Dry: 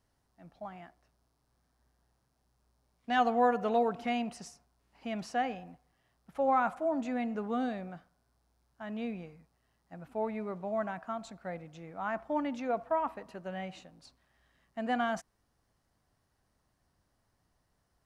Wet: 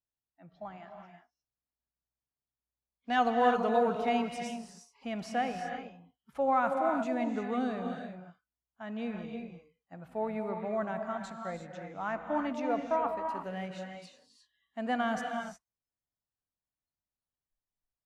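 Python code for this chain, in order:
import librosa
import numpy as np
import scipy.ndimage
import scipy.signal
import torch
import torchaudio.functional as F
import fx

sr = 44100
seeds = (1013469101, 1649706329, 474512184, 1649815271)

y = fx.noise_reduce_blind(x, sr, reduce_db=26)
y = fx.rev_gated(y, sr, seeds[0], gate_ms=380, shape='rising', drr_db=4.0)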